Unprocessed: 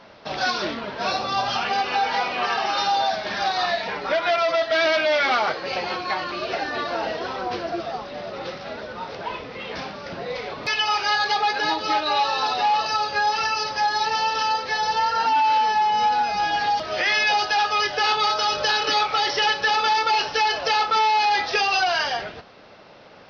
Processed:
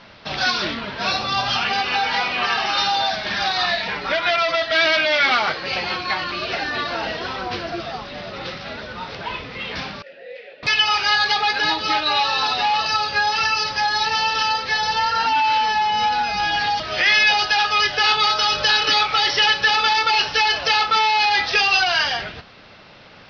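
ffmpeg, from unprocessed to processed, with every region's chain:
-filter_complex "[0:a]asettb=1/sr,asplit=3[a][b][c];[a]atrim=end=10.024[d];[b]atrim=start=10.02:end=10.63,asetpts=PTS-STARTPTS,afade=t=in:d=0.004:c=qsin,afade=t=out:st=0.606:d=0.004:c=qsin,asplit=3[e][f][g];[e]bandpass=f=530:t=q:w=8,volume=0dB[h];[f]bandpass=f=1.84k:t=q:w=8,volume=-6dB[i];[g]bandpass=f=2.48k:t=q:w=8,volume=-9dB[j];[h][i][j]amix=inputs=3:normalize=0,equalizer=f=96:w=0.74:g=-9.5,asplit=2[k][l];[l]adelay=19,volume=-11dB[m];[k][m]amix=inputs=2:normalize=0,atrim=end_sample=26901[n];[c]atrim=start=10.626[o];[d][n]acrossfade=d=0.004:c1=hsin:c2=qsin[p];[p][o]acrossfade=d=0.004:c1=qsin:c2=hsin,lowpass=4.7k,equalizer=f=540:t=o:w=2.8:g=-11,volume=9dB"

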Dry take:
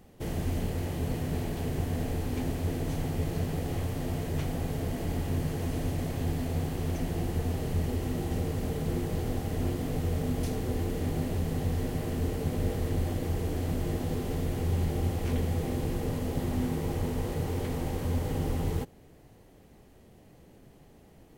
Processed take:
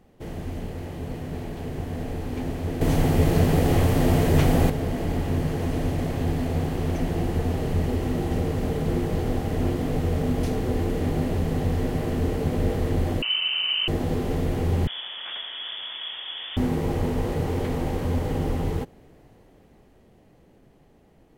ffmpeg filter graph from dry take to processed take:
-filter_complex "[0:a]asettb=1/sr,asplit=3[a][b][c];[a]atrim=end=2.814[d];[b]atrim=start=2.81:end=4.7,asetpts=PTS-STARTPTS,afade=t=in:d=0.004:c=qsin,afade=t=out:st=1.886:d=0.004:c=qsin,acontrast=90,highshelf=f=7.5k:g=6[e];[c]atrim=start=4.696[f];[d][e]acrossfade=d=0.004:c1=hsin:c2=qsin[g];[g][f]acrossfade=d=0.004:c1=qsin:c2=hsin,asettb=1/sr,asplit=3[h][i][j];[h]atrim=end=13.224[k];[i]atrim=start=13.22:end=13.88,asetpts=PTS-STARTPTS,afade=t=in:d=0.004:c=qsin,afade=t=out:st=0.656:d=0.004:c=qsin,bandreject=f=640:w=7.3,lowpass=f=2.6k:t=q:w=0.5098,lowpass=f=2.6k:t=q:w=0.6013,lowpass=f=2.6k:t=q:w=0.9,lowpass=f=2.6k:t=q:w=2.563,afreqshift=-3100[l];[j]atrim=start=13.876[m];[k][l]acrossfade=d=0.004:c1=hsin:c2=qsin[n];[n][m]acrossfade=d=0.004:c1=qsin:c2=hsin,asettb=1/sr,asplit=3[o][p][q];[o]atrim=end=14.874[r];[p]atrim=start=14.87:end=16.57,asetpts=PTS-STARTPTS,afade=t=in:d=0.004:c=qsin,afade=t=out:st=1.696:d=0.004:c=qsin,highpass=f=400:w=0.5412,highpass=f=400:w=1.3066,lowpass=f=3.2k:t=q:w=0.5098,lowpass=f=3.2k:t=q:w=0.6013,lowpass=f=3.2k:t=q:w=0.9,lowpass=f=3.2k:t=q:w=2.563,afreqshift=-3800[s];[q]atrim=start=16.566[t];[r][s]acrossfade=d=0.004:c1=hsin:c2=qsin[u];[u][t]acrossfade=d=0.004:c1=qsin:c2=hsin,equalizer=f=92:t=o:w=2:g=-3,dynaudnorm=f=260:g=21:m=7.5dB,highshelf=f=4.5k:g=-9"

